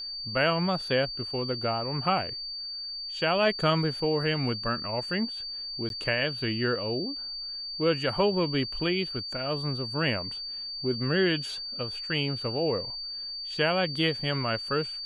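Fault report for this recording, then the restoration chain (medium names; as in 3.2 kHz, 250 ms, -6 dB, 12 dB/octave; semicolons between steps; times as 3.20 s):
whine 4.6 kHz -34 dBFS
5.89–5.90 s: dropout 12 ms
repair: band-stop 4.6 kHz, Q 30; interpolate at 5.89 s, 12 ms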